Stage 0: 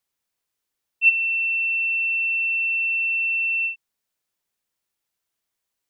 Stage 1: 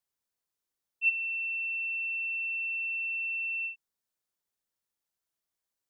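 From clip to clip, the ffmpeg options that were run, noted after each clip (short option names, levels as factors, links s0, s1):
-af "equalizer=f=2500:w=1.5:g=-4,volume=0.473"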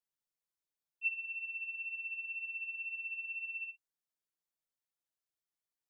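-af "flanger=delay=5.6:depth=1.4:regen=28:speed=2:shape=triangular,volume=0.596"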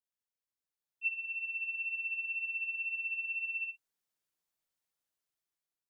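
-af "dynaudnorm=f=440:g=5:m=2.99,volume=0.562"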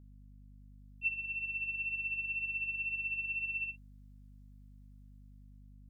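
-af "aeval=exprs='val(0)+0.002*(sin(2*PI*50*n/s)+sin(2*PI*2*50*n/s)/2+sin(2*PI*3*50*n/s)/3+sin(2*PI*4*50*n/s)/4+sin(2*PI*5*50*n/s)/5)':c=same"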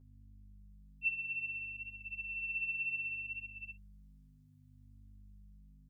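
-filter_complex "[0:a]asplit=2[s0][s1];[s1]adelay=8.8,afreqshift=0.63[s2];[s0][s2]amix=inputs=2:normalize=1"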